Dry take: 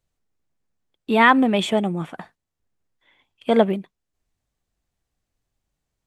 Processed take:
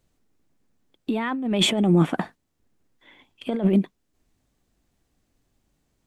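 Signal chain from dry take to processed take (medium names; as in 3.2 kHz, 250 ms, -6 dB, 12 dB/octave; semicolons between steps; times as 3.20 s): peaking EQ 270 Hz +8 dB 1.2 oct; compressor with a negative ratio -22 dBFS, ratio -1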